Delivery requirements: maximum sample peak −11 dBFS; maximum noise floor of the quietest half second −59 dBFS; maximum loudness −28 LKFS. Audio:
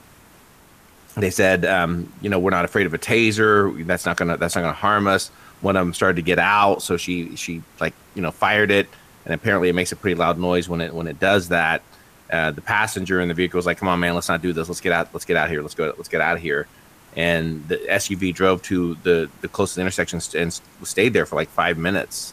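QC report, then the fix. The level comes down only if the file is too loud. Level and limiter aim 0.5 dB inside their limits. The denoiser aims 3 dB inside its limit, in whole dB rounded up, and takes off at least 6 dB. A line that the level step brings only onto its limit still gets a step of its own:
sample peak −4.0 dBFS: out of spec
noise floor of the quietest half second −50 dBFS: out of spec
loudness −20.5 LKFS: out of spec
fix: broadband denoise 6 dB, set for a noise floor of −50 dBFS
level −8 dB

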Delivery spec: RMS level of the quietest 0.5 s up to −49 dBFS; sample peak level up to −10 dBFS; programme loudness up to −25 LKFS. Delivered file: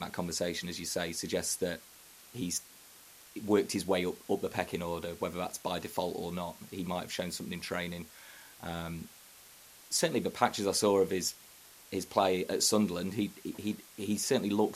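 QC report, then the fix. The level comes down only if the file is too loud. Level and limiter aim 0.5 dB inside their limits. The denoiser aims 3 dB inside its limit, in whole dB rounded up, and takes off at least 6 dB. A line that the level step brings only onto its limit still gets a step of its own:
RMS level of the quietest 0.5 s −56 dBFS: in spec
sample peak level −11.0 dBFS: in spec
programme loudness −33.0 LKFS: in spec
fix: no processing needed

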